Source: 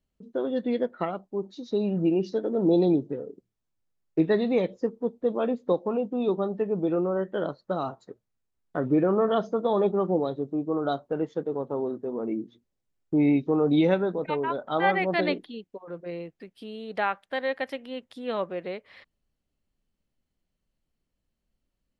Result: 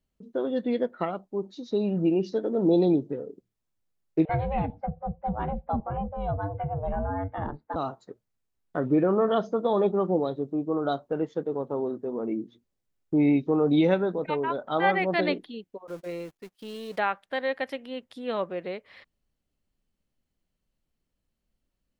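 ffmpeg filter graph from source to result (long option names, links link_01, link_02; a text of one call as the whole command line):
ffmpeg -i in.wav -filter_complex "[0:a]asettb=1/sr,asplit=3[link_01][link_02][link_03];[link_01]atrim=end=4.254[link_04];[link_02]atrim=start=4.25:end=7.76,asetpts=PTS-STARTPTS,afade=type=in:duration=0.004:curve=qsin,afade=type=out:start_time=3.506:duration=0.004:curve=qsin,lowpass=frequency=2500:width=0.5412,lowpass=frequency=2500:width=1.3066,aeval=exprs='val(0)*sin(2*PI*290*n/s)':channel_layout=same,acrossover=split=390[link_05][link_06];[link_05]adelay=40[link_07];[link_07][link_06]amix=inputs=2:normalize=0,atrim=end_sample=154791[link_08];[link_03]atrim=start=7.756[link_09];[link_04][link_08]acrossfade=duration=0.004:curve1=hsin:curve2=qsin[link_10];[link_10][link_09]acrossfade=duration=0.004:curve1=qsin:curve2=hsin,asettb=1/sr,asplit=3[link_11][link_12][link_13];[link_11]atrim=end=15.874[link_14];[link_12]atrim=start=15.87:end=16.99,asetpts=PTS-STARTPTS,afade=type=in:duration=0.004:curve=qsin,afade=type=out:start_time=1.116:duration=0.004:curve=qsin,aeval=exprs='val(0)+0.5*0.00531*sgn(val(0))':channel_layout=same,bass=frequency=250:gain=-4,treble=frequency=4000:gain=4,agate=range=-31dB:threshold=-44dB:ratio=16:release=100:detection=peak[link_15];[link_13]atrim=start=16.986[link_16];[link_14][link_15]acrossfade=duration=0.004:curve1=hsin:curve2=qsin[link_17];[link_17][link_16]acrossfade=duration=0.004:curve1=qsin:curve2=hsin" out.wav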